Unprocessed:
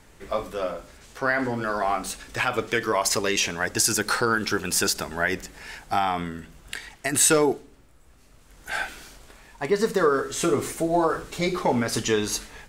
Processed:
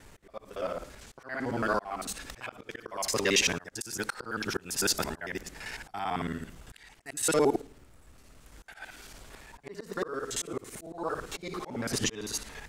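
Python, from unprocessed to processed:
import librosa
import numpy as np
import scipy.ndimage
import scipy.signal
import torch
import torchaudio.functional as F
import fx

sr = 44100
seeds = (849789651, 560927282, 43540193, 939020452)

y = fx.local_reverse(x, sr, ms=56.0)
y = fx.auto_swell(y, sr, attack_ms=473.0)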